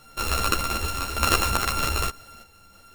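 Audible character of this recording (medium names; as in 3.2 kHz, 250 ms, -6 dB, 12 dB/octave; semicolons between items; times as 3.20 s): a buzz of ramps at a fixed pitch in blocks of 32 samples; random-step tremolo 3.3 Hz; a shimmering, thickened sound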